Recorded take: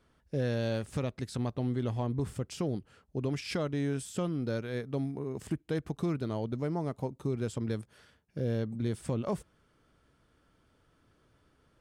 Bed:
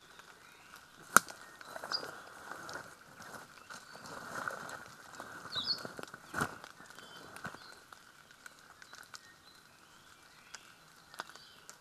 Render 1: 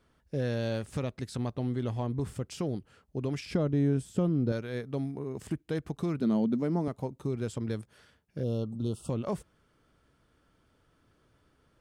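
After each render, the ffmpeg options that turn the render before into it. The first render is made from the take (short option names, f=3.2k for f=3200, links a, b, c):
-filter_complex "[0:a]asettb=1/sr,asplit=3[a][b][c];[a]atrim=end=3.454[d];[b]atrim=start=3.45:end=4.52,asetpts=PTS-STARTPTS,afade=t=in:d=0.004:c=qsin,afade=t=out:st=1.066:d=0.004:c=qsin,tiltshelf=f=770:g=7[e];[c]atrim=start=4.516[f];[d][e]acrossfade=d=0.004:c1=hsin:c2=qsin[g];[g][f]acrossfade=d=0.004:c1=qsin:c2=hsin,asettb=1/sr,asplit=3[h][i][j];[h]atrim=end=6.204[k];[i]atrim=start=6.2:end=6.88,asetpts=PTS-STARTPTS,afade=t=in:d=0.004:c=qsin,afade=t=out:st=0.676:d=0.004:c=qsin,highpass=f=210:t=q:w=4.9[l];[j]atrim=start=6.876[m];[k][l]acrossfade=d=0.004:c1=hsin:c2=qsin[n];[n][m]acrossfade=d=0.004:c1=qsin:c2=hsin,asettb=1/sr,asplit=3[o][p][q];[o]atrim=end=8.434[r];[p]atrim=start=8.43:end=9.1,asetpts=PTS-STARTPTS,afade=t=in:d=0.004:c=qsin,afade=t=out:st=0.666:d=0.004:c=qsin,asuperstop=centerf=1900:order=20:qfactor=1.6[s];[q]atrim=start=9.096[t];[r][s]acrossfade=d=0.004:c1=hsin:c2=qsin[u];[u][t]acrossfade=d=0.004:c1=qsin:c2=hsin"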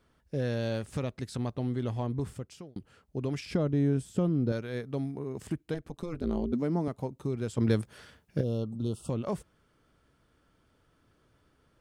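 -filter_complex "[0:a]asettb=1/sr,asplit=3[a][b][c];[a]atrim=end=5.744[d];[b]atrim=start=5.74:end=6.53,asetpts=PTS-STARTPTS,afade=t=in:d=0.004:c=qsin,afade=t=out:st=0.786:d=0.004:c=qsin,tremolo=f=170:d=0.974[e];[c]atrim=start=6.526[f];[d][e]acrossfade=d=0.004:c1=hsin:c2=qsin[g];[g][f]acrossfade=d=0.004:c1=qsin:c2=hsin,asplit=4[h][i][j][k];[h]atrim=end=2.76,asetpts=PTS-STARTPTS,afade=t=out:st=2.18:d=0.58[l];[i]atrim=start=2.76:end=7.582,asetpts=PTS-STARTPTS,afade=t=in:d=0.004:c=hsin[m];[j]atrim=start=7.578:end=8.412,asetpts=PTS-STARTPTS,volume=8dB[n];[k]atrim=start=8.408[o];[l][m]concat=n=2:v=0:a=1[p];[p][n]acrossfade=d=0.004:c1=hsin:c2=hsin[q];[q][o]acrossfade=d=0.004:c1=hsin:c2=hsin"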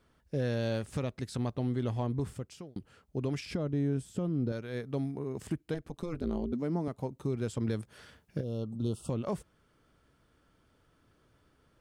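-af "alimiter=limit=-22dB:level=0:latency=1:release=446"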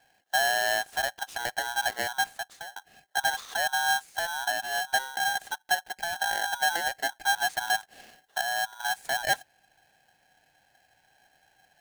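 -af "highpass=f=430:t=q:w=4.9,aeval=exprs='val(0)*sgn(sin(2*PI*1200*n/s))':c=same"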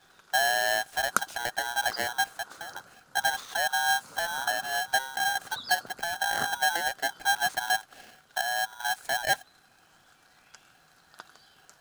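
-filter_complex "[1:a]volume=-3dB[a];[0:a][a]amix=inputs=2:normalize=0"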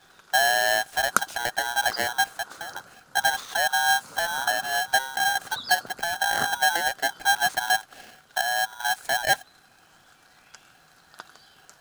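-af "volume=4dB"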